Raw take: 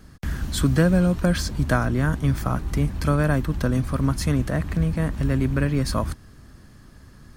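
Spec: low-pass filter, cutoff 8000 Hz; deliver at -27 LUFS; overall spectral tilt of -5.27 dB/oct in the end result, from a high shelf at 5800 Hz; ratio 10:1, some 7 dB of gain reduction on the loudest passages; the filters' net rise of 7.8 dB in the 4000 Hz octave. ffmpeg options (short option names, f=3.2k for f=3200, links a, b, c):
-af "lowpass=8k,equalizer=f=4k:t=o:g=7,highshelf=f=5.8k:g=7,acompressor=threshold=-21dB:ratio=10"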